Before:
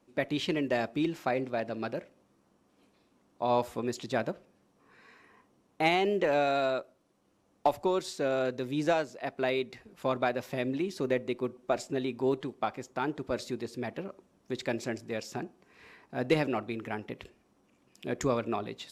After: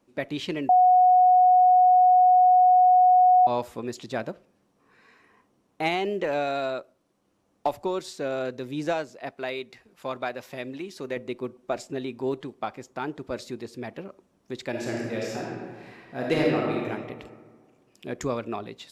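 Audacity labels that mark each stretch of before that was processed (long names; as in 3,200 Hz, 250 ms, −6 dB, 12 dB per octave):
0.690000	3.470000	beep over 732 Hz −13.5 dBFS
9.310000	11.170000	low-shelf EQ 480 Hz −6.5 dB
14.700000	16.870000	thrown reverb, RT60 1.7 s, DRR −3.5 dB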